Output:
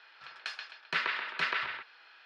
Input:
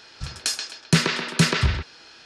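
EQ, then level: high-pass 1.2 kHz 12 dB/octave; distance through air 370 m; treble shelf 5.3 kHz -9 dB; 0.0 dB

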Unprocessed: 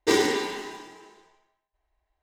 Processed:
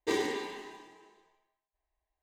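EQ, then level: Butterworth band-stop 1.4 kHz, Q 6.2; tone controls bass -2 dB, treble -4 dB; band-stop 5.3 kHz, Q 12; -8.5 dB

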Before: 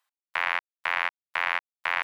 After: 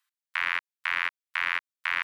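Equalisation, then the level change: high-pass 1.2 kHz 24 dB/octave; 0.0 dB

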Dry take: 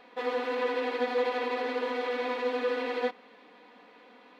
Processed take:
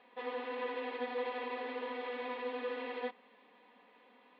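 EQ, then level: cabinet simulation 150–3400 Hz, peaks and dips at 170 Hz -5 dB, 310 Hz -8 dB, 470 Hz -4 dB, 700 Hz -4 dB, 1.4 kHz -8 dB, 2.3 kHz -3 dB; -5.0 dB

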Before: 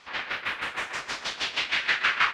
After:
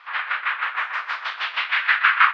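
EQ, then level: resonant high-pass 1.2 kHz, resonance Q 1.9; distance through air 360 m; +6.5 dB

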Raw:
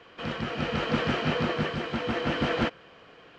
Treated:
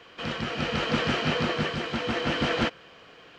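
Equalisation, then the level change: treble shelf 3 kHz +8 dB; 0.0 dB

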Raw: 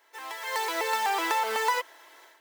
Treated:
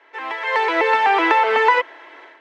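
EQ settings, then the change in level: steep high-pass 240 Hz 96 dB/octave; resonant low-pass 2.4 kHz, resonance Q 1.6; bass shelf 440 Hz +11.5 dB; +7.5 dB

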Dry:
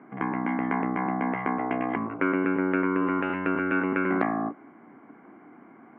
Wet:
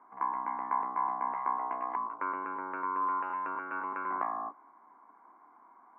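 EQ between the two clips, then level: band-pass filter 1 kHz, Q 7.8; +5.5 dB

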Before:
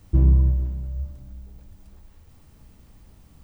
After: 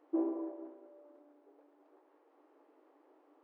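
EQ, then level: low-pass 1 kHz 12 dB/octave; dynamic bell 730 Hz, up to +5 dB, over -49 dBFS, Q 2; brick-wall FIR high-pass 280 Hz; 0.0 dB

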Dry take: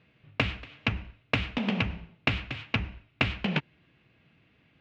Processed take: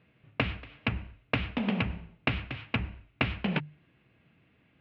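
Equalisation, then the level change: distance through air 230 m; hum notches 50/100/150 Hz; 0.0 dB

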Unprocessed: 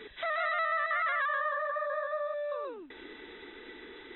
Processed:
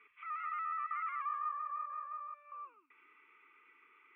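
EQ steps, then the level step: two resonant band-passes 1.7 kHz, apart 0.97 oct; static phaser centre 1.6 kHz, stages 4; -1.5 dB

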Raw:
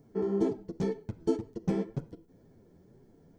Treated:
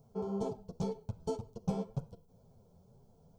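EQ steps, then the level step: static phaser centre 770 Hz, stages 4; +1.0 dB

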